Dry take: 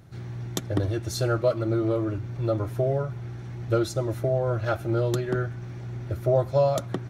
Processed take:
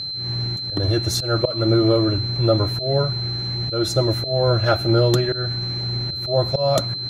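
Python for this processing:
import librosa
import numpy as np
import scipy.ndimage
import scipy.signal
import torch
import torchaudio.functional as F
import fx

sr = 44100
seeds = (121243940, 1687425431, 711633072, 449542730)

y = fx.auto_swell(x, sr, attack_ms=194.0)
y = y + 10.0 ** (-34.0 / 20.0) * np.sin(2.0 * np.pi * 4100.0 * np.arange(len(y)) / sr)
y = y * librosa.db_to_amplitude(8.0)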